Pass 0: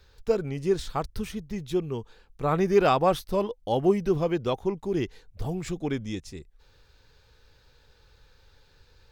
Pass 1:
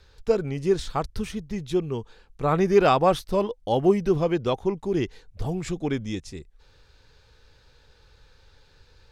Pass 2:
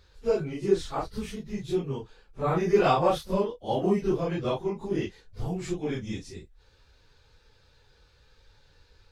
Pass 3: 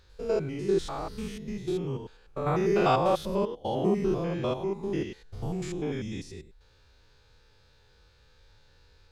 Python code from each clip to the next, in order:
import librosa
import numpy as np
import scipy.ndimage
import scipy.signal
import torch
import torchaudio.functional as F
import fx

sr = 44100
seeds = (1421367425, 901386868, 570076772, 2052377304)

y1 = scipy.signal.sosfilt(scipy.signal.butter(2, 11000.0, 'lowpass', fs=sr, output='sos'), x)
y1 = y1 * librosa.db_to_amplitude(2.5)
y2 = fx.phase_scramble(y1, sr, seeds[0], window_ms=100)
y2 = y2 * librosa.db_to_amplitude(-3.5)
y3 = fx.spec_steps(y2, sr, hold_ms=100)
y3 = y3 * librosa.db_to_amplitude(1.0)